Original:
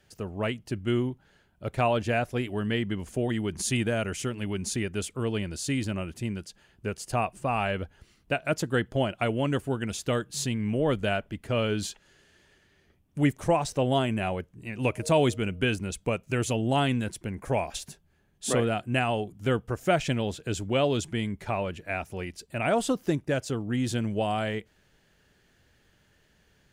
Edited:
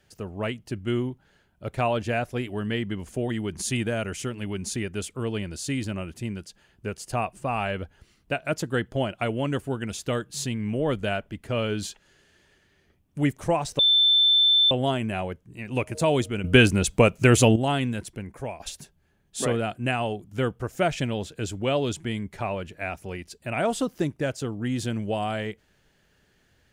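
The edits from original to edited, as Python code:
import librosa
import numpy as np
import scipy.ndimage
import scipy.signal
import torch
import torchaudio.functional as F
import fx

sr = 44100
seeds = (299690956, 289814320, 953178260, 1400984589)

y = fx.edit(x, sr, fx.insert_tone(at_s=13.79, length_s=0.92, hz=3540.0, db=-15.5),
    fx.clip_gain(start_s=15.52, length_s=1.12, db=10.5),
    fx.fade_out_to(start_s=17.17, length_s=0.51, floor_db=-11.0), tone=tone)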